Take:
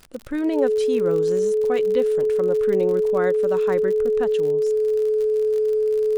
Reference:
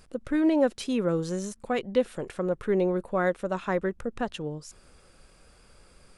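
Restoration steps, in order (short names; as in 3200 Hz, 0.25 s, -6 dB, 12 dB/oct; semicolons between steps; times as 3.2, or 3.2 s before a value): de-click; notch 430 Hz, Q 30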